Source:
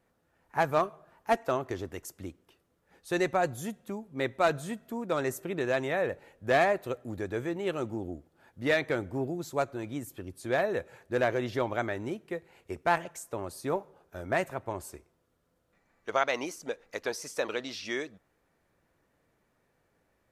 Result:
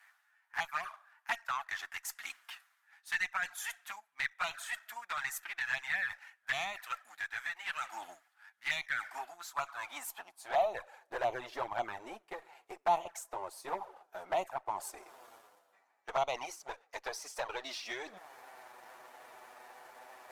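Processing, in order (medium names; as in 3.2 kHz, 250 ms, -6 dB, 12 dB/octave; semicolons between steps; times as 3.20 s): high-pass sweep 1.7 kHz -> 430 Hz, 9.13–11.20 s; reverse; upward compressor, threshold -29 dBFS; reverse; waveshaping leveller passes 1; in parallel at 0 dB: compression 6:1, threshold -35 dBFS, peak gain reduction 17.5 dB; on the sum: Chebyshev shaper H 4 -24 dB, 8 -39 dB, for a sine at -9 dBFS; resonant low shelf 610 Hz -8 dB, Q 3; touch-sensitive flanger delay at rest 11 ms, full sweep at -17.5 dBFS; trim -8.5 dB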